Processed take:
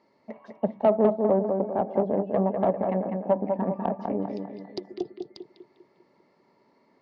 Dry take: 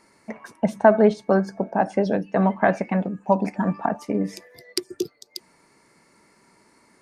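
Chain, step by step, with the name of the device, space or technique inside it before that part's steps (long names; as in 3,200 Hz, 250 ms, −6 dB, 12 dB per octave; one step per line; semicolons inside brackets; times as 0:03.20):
treble cut that deepens with the level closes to 870 Hz, closed at −16.5 dBFS
analogue delay pedal into a guitar amplifier (bucket-brigade delay 199 ms, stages 4,096, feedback 48%, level −5 dB; tube saturation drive 11 dB, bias 0.65; loudspeaker in its box 98–4,300 Hz, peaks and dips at 250 Hz +3 dB, 400 Hz +3 dB, 580 Hz +7 dB, 840 Hz +3 dB, 1,500 Hz −10 dB, 2,400 Hz −6 dB)
level −4.5 dB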